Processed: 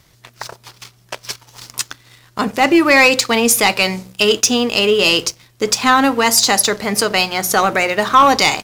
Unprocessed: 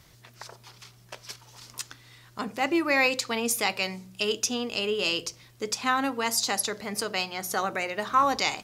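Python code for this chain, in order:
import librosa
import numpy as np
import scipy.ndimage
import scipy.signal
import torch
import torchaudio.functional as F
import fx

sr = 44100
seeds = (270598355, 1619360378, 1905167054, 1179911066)

y = fx.leveller(x, sr, passes=2)
y = y * librosa.db_to_amplitude(7.0)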